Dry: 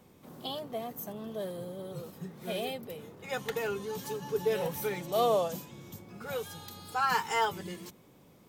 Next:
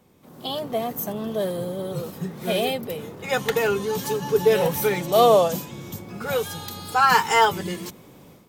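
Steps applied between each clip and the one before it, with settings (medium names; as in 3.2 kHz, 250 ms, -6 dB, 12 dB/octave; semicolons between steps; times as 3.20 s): level rider gain up to 11.5 dB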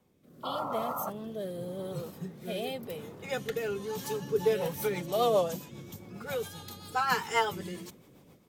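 rotary cabinet horn 0.9 Hz, later 7.5 Hz, at 3.99 s; painted sound noise, 0.43–1.10 s, 500–1400 Hz -28 dBFS; trim -7.5 dB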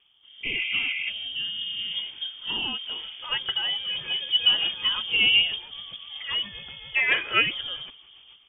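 frequency inversion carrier 3.4 kHz; trim +5.5 dB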